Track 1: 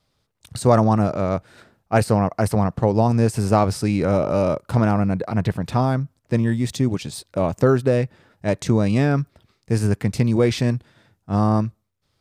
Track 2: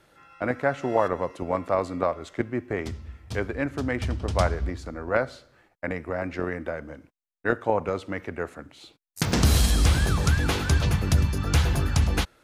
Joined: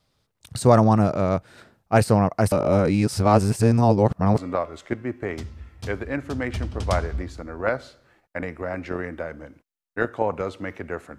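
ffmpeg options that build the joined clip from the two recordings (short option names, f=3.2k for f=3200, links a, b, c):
-filter_complex "[0:a]apad=whole_dur=11.18,atrim=end=11.18,asplit=2[a][b];[a]atrim=end=2.522[c];[b]atrim=start=2.518:end=4.382,asetpts=PTS-STARTPTS,areverse[d];[1:a]atrim=start=1.858:end=8.66[e];[c][d]acrossfade=d=0.004:c1=hsin:c2=hsin[f];[f][e]acrossfade=d=0.004:c1=hsin:c2=hsin"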